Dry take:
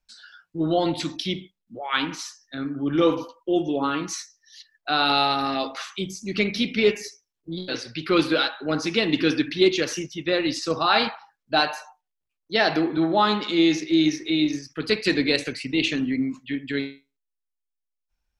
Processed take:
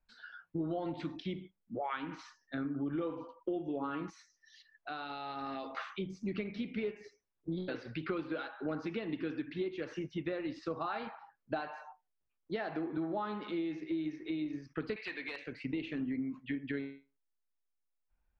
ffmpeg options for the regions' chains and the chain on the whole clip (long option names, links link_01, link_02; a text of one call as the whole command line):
ffmpeg -i in.wav -filter_complex "[0:a]asettb=1/sr,asplit=3[link_01][link_02][link_03];[link_01]atrim=end=4.104[link_04];[link_02]atrim=start=4.1:end=5.77,asetpts=PTS-STARTPTS,afade=type=in:duration=0.004:curve=qsin,afade=type=out:start_time=1.666:duration=0.004:curve=qsin,aemphasis=mode=production:type=75fm,acompressor=threshold=-45dB:ratio=2:attack=3.2:release=140:knee=1:detection=peak[link_05];[link_03]atrim=start=5.766[link_06];[link_04][link_05]acrossfade=duration=0.004:curve1=hsin:curve2=qsin[link_07];[link_07][link_06]acrossfade=duration=0.004:curve1=qsin:curve2=hsin,asettb=1/sr,asplit=3[link_08][link_09][link_10];[link_08]atrim=end=14.964[link_11];[link_09]atrim=start=14.96:end=15.46,asetpts=PTS-STARTPTS,afade=type=in:duration=0.004:curve=qsin,afade=type=out:start_time=0.496:duration=0.004:curve=qsin,bandpass=frequency=2900:width_type=q:width=1,aeval=exprs='0.355*sin(PI/2*2.51*val(0)/0.355)':channel_layout=same[link_12];[link_10]atrim=start=15.456[link_13];[link_11][link_12]acrossfade=duration=0.004:curve1=hsin:curve2=qsin[link_14];[link_14][link_13]acrossfade=duration=0.004:curve1=qsin:curve2=hsin,acompressor=threshold=-33dB:ratio=12,lowpass=1800" out.wav